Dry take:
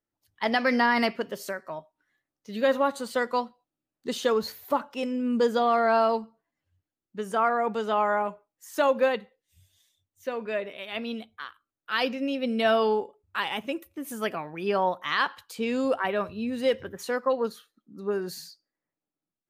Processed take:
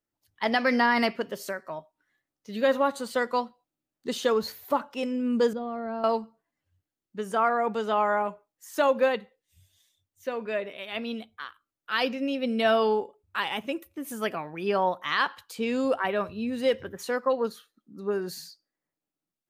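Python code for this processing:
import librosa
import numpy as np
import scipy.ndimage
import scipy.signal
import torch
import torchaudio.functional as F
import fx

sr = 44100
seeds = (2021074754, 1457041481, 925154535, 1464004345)

y = fx.curve_eq(x, sr, hz=(170.0, 820.0, 14000.0), db=(0, -14, -26), at=(5.53, 6.04))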